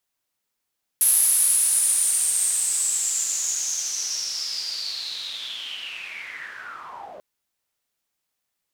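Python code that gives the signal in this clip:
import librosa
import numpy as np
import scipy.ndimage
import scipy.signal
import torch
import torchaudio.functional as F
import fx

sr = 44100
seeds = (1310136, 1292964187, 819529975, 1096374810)

y = fx.riser_noise(sr, seeds[0], length_s=6.19, colour='pink', kind='bandpass', start_hz=11000.0, end_hz=550.0, q=9.1, swell_db=-24, law='linear')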